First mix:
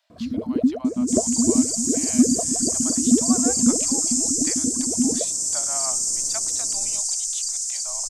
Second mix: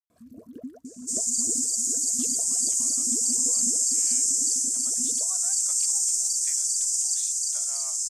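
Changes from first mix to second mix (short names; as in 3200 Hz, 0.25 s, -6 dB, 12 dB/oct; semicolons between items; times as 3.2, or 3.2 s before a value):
speech: entry +2.00 s; master: add pre-emphasis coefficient 0.9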